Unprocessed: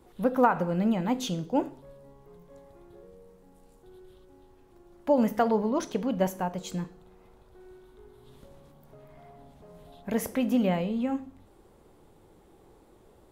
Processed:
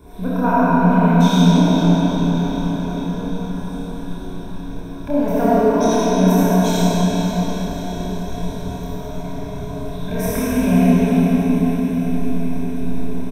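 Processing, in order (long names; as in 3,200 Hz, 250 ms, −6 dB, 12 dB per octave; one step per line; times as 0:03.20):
EQ curve with evenly spaced ripples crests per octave 1.6, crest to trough 13 dB
in parallel at +1 dB: compressor whose output falls as the input rises −37 dBFS, ratio −1
on the sum: low-shelf EQ 170 Hz +8.5 dB
double-tracking delay 28 ms −2 dB
on a send: feedback delay with all-pass diffusion 477 ms, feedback 74%, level −12 dB
on the sum: comb and all-pass reverb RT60 4.9 s, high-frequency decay 0.8×, pre-delay 20 ms, DRR −9.5 dB
level −5.5 dB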